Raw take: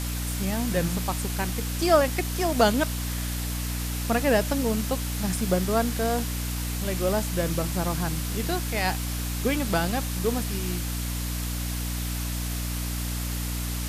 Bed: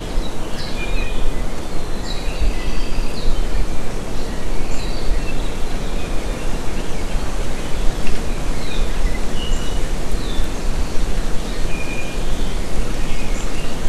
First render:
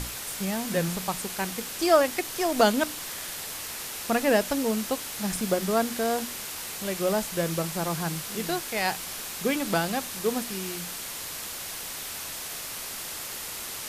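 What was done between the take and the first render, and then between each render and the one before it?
mains-hum notches 60/120/180/240/300 Hz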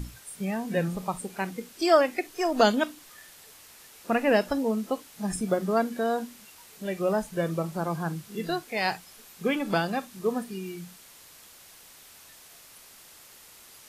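noise reduction from a noise print 15 dB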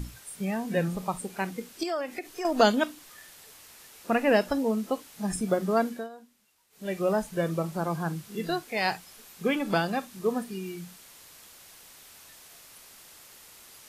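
0:01.83–0:02.45: downward compressor 2.5 to 1, threshold −33 dBFS
0:05.88–0:06.91: duck −18.5 dB, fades 0.21 s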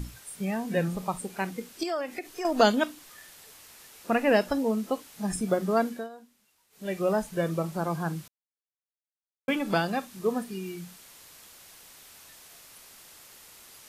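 0:08.28–0:09.48: silence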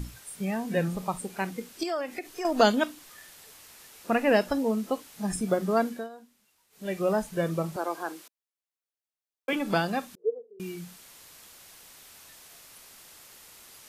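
0:07.76–0:09.53: Butterworth high-pass 290 Hz
0:10.15–0:10.60: flat-topped band-pass 460 Hz, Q 5.2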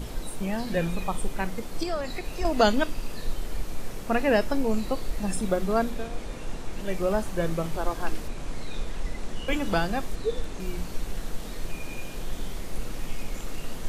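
mix in bed −13 dB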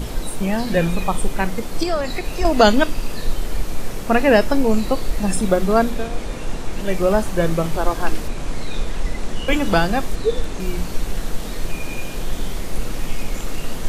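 level +8.5 dB
brickwall limiter −1 dBFS, peak gain reduction 1 dB

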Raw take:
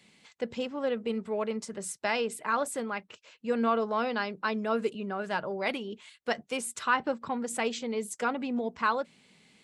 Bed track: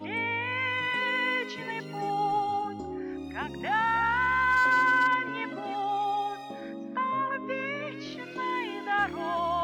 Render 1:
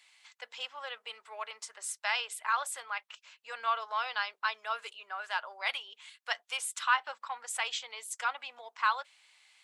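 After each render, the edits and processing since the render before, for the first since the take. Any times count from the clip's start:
high-pass filter 880 Hz 24 dB per octave
dynamic equaliser 3,300 Hz, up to +6 dB, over −55 dBFS, Q 3.7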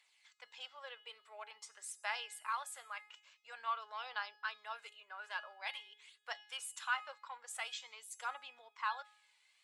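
tuned comb filter 420 Hz, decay 0.68 s, mix 70%
phase shifter 0.48 Hz, delay 2.1 ms, feedback 39%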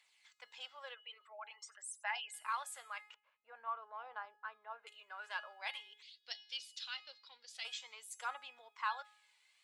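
0:00.94–0:02.34: spectral envelope exaggerated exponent 2
0:03.14–0:04.87: low-pass filter 1,100 Hz
0:06.02–0:07.65: drawn EQ curve 270 Hz 0 dB, 1,100 Hz −20 dB, 4,800 Hz +12 dB, 7,900 Hz −15 dB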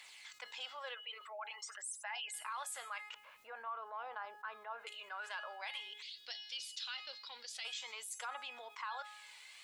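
brickwall limiter −34.5 dBFS, peak gain reduction 9.5 dB
envelope flattener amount 50%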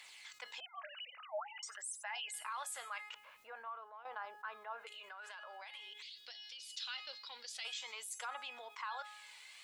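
0:00.60–0:01.63: three sine waves on the formant tracks
0:03.22–0:04.05: fade out equal-power, to −12 dB
0:04.85–0:06.70: downward compressor 5 to 1, threshold −47 dBFS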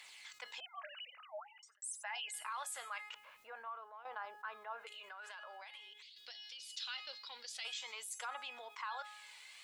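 0:00.91–0:01.82: fade out
0:05.46–0:06.16: fade out linear, to −8 dB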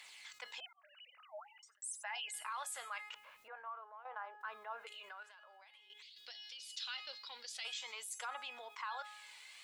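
0:00.73–0:01.95: fade in equal-power
0:03.48–0:04.41: band-pass filter 460–2,100 Hz
0:05.23–0:05.90: clip gain −9.5 dB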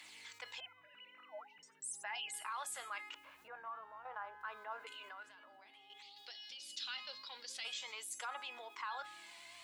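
mix in bed track −37 dB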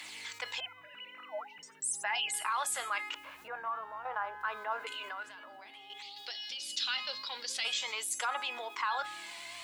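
level +10 dB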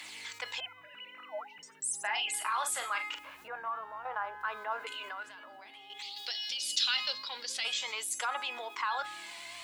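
0:02.00–0:03.27: double-tracking delay 42 ms −8 dB
0:05.99–0:07.13: high-shelf EQ 2,700 Hz +7.5 dB

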